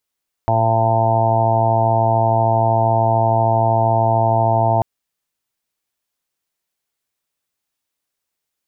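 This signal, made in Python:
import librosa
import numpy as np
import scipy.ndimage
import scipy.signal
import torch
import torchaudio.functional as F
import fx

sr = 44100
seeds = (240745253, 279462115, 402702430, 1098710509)

y = fx.additive_steady(sr, length_s=4.34, hz=113.0, level_db=-18, upper_db=(-11, -11.0, -15, -10.5, 1.5, -3.5, -2, -16.5))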